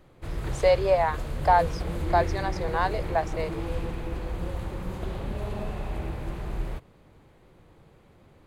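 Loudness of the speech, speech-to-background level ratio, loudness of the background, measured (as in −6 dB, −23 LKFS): −26.0 LKFS, 8.0 dB, −34.0 LKFS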